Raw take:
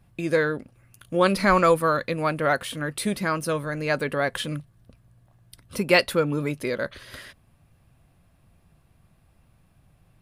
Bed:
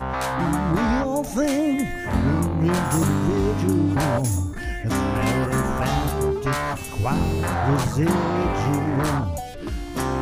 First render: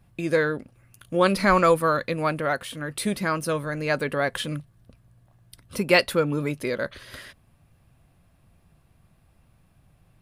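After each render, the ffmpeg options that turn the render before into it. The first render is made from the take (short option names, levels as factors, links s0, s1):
-filter_complex "[0:a]asplit=3[s0][s1][s2];[s0]atrim=end=2.412[s3];[s1]atrim=start=2.408:end=2.902,asetpts=PTS-STARTPTS,volume=0.708[s4];[s2]atrim=start=2.898[s5];[s3][s4]acrossfade=d=0.004:c1=hsin:c2=hsin[s6];[s6][s5]acrossfade=d=0.004:c1=hsin:c2=hsin"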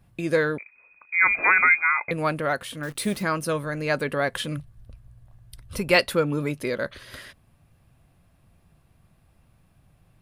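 -filter_complex "[0:a]asettb=1/sr,asplit=3[s0][s1][s2];[s0]atrim=end=0.584[s3];[s1]atrim=start=0.58:end=2.11,asetpts=PTS-STARTPTS,afade=t=in:d=0.004:c=qsin,afade=t=out:st=1.526:d=0.004:c=qsin,lowpass=f=2200:t=q:w=0.5098,lowpass=f=2200:t=q:w=0.6013,lowpass=f=2200:t=q:w=0.9,lowpass=f=2200:t=q:w=2.563,afreqshift=-2600[s4];[s2]atrim=start=2.106[s5];[s3][s4]acrossfade=d=0.004:c1=hsin:c2=qsin[s6];[s6][s5]acrossfade=d=0.004:c1=qsin:c2=hsin,asettb=1/sr,asplit=3[s7][s8][s9];[s7]atrim=end=2.834[s10];[s8]atrim=start=2.83:end=3.23,asetpts=PTS-STARTPTS,afade=t=in:d=0.004:c=qsin,afade=t=out:st=0.396:d=0.004:c=qsin,acrusher=bits=8:dc=4:mix=0:aa=0.000001[s11];[s9]atrim=start=3.226[s12];[s10][s11]acrossfade=d=0.004:c1=hsin:c2=qsin[s13];[s13][s12]acrossfade=d=0.004:c1=qsin:c2=hsin,asplit=3[s14][s15][s16];[s14]afade=t=out:st=4.56:d=0.02[s17];[s15]asubboost=boost=6:cutoff=88,afade=t=in:st=4.56:d=0.02,afade=t=out:st=5.95:d=0.02[s18];[s16]afade=t=in:st=5.95:d=0.02[s19];[s17][s18][s19]amix=inputs=3:normalize=0"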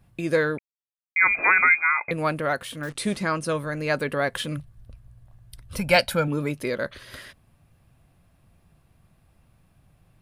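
-filter_complex "[0:a]asettb=1/sr,asplit=3[s0][s1][s2];[s0]atrim=end=2.894[s3];[s1]atrim=start=2.89:end=3.52,asetpts=PTS-STARTPTS,afade=t=in:d=0.004:c=qsin,afade=t=out:st=0.626:d=0.004:c=qsin,lowpass=f=10000:w=0.5412,lowpass=f=10000:w=1.3066[s4];[s2]atrim=start=3.516[s5];[s3][s4]acrossfade=d=0.004:c1=hsin:c2=qsin[s6];[s6][s5]acrossfade=d=0.004:c1=qsin:c2=hsin,asettb=1/sr,asplit=3[s7][s8][s9];[s7]atrim=end=5.794[s10];[s8]atrim=start=5.79:end=6.28,asetpts=PTS-STARTPTS,afade=t=in:d=0.004:c=qsin,afade=t=out:st=0.486:d=0.004:c=qsin,aecho=1:1:1.3:0.73,atrim=end_sample=21609[s11];[s9]atrim=start=6.276[s12];[s10][s11]acrossfade=d=0.004:c1=hsin:c2=qsin[s13];[s13][s12]acrossfade=d=0.004:c1=qsin:c2=hsin,asplit=3[s14][s15][s16];[s14]atrim=end=0.59,asetpts=PTS-STARTPTS,afade=t=out:st=0.586:d=0.004:c=hsin[s17];[s15]atrim=start=0.59:end=1.16,asetpts=PTS-STARTPTS,volume=0[s18];[s16]atrim=start=1.16,asetpts=PTS-STARTPTS,afade=t=in:d=0.004:c=hsin[s19];[s17][s18][s19]concat=n=3:v=0:a=1"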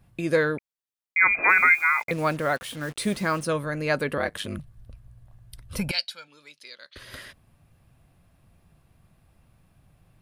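-filter_complex "[0:a]asplit=3[s0][s1][s2];[s0]afade=t=out:st=1.48:d=0.02[s3];[s1]acrusher=bits=6:mix=0:aa=0.5,afade=t=in:st=1.48:d=0.02,afade=t=out:st=3.45:d=0.02[s4];[s2]afade=t=in:st=3.45:d=0.02[s5];[s3][s4][s5]amix=inputs=3:normalize=0,asettb=1/sr,asplit=3[s6][s7][s8];[s6]atrim=end=4.174[s9];[s7]atrim=start=4.17:end=4.59,asetpts=PTS-STARTPTS,afade=t=in:d=0.004:c=qsin,afade=t=out:st=0.416:d=0.004:c=qsin,aeval=exprs='val(0)*sin(2*PI*52*n/s)':c=same[s10];[s8]atrim=start=4.586[s11];[s9][s10]acrossfade=d=0.004:c1=hsin:c2=qsin[s12];[s12][s11]acrossfade=d=0.004:c1=qsin:c2=hsin,asettb=1/sr,asplit=3[s13][s14][s15];[s13]atrim=end=5.914[s16];[s14]atrim=start=5.91:end=6.96,asetpts=PTS-STARTPTS,afade=t=in:d=0.004:c=qsin,afade=t=out:st=1.046:d=0.004:c=qsin,bandpass=f=4400:t=q:w=2.6[s17];[s15]atrim=start=6.956[s18];[s16][s17]acrossfade=d=0.004:c1=hsin:c2=qsin[s19];[s19][s18]acrossfade=d=0.004:c1=qsin:c2=hsin"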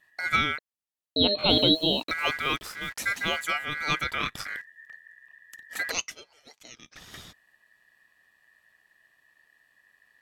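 -filter_complex "[0:a]acrossover=split=150|460|4200[s0][s1][s2][s3];[s1]aeval=exprs='val(0)*gte(abs(val(0)),0.00531)':c=same[s4];[s0][s4][s2][s3]amix=inputs=4:normalize=0,aeval=exprs='val(0)*sin(2*PI*1800*n/s)':c=same"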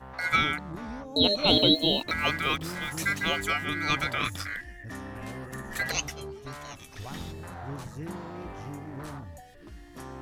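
-filter_complex "[1:a]volume=0.133[s0];[0:a][s0]amix=inputs=2:normalize=0"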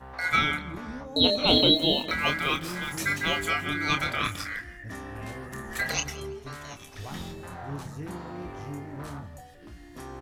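-filter_complex "[0:a]asplit=2[s0][s1];[s1]adelay=28,volume=0.447[s2];[s0][s2]amix=inputs=2:normalize=0,asplit=2[s3][s4];[s4]adelay=166,lowpass=f=3800:p=1,volume=0.15,asplit=2[s5][s6];[s6]adelay=166,lowpass=f=3800:p=1,volume=0.33,asplit=2[s7][s8];[s8]adelay=166,lowpass=f=3800:p=1,volume=0.33[s9];[s3][s5][s7][s9]amix=inputs=4:normalize=0"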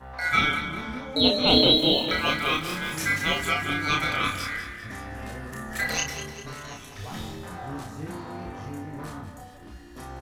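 -filter_complex "[0:a]asplit=2[s0][s1];[s1]adelay=32,volume=0.708[s2];[s0][s2]amix=inputs=2:normalize=0,aecho=1:1:198|396|594|792|990:0.237|0.126|0.0666|0.0353|0.0187"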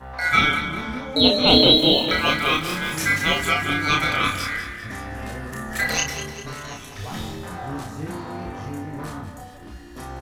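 -af "volume=1.68,alimiter=limit=0.891:level=0:latency=1"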